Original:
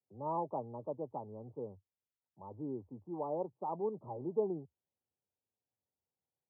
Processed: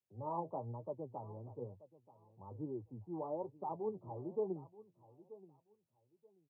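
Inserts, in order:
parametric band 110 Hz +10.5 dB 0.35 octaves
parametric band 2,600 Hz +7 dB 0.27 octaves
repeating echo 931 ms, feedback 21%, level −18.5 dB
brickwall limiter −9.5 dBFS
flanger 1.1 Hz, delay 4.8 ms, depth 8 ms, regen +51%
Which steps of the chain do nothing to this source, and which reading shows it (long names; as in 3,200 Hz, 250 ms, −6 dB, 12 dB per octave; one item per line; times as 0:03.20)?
parametric band 2,600 Hz: nothing at its input above 1,200 Hz
brickwall limiter −9.5 dBFS: peak of its input −21.5 dBFS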